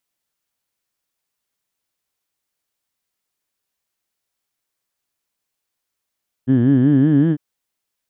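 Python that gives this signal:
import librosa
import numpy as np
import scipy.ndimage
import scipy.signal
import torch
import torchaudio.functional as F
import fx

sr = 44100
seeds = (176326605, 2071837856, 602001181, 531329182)

y = fx.formant_vowel(sr, seeds[0], length_s=0.9, hz=122.0, glide_st=4.5, vibrato_hz=5.3, vibrato_st=1.45, f1_hz=280.0, f2_hz=1700.0, f3_hz=3100.0)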